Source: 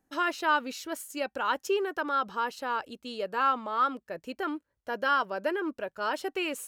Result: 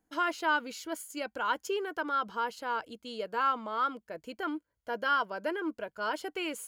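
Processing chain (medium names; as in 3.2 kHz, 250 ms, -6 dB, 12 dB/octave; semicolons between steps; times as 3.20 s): rippled EQ curve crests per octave 1.8, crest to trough 6 dB; trim -3 dB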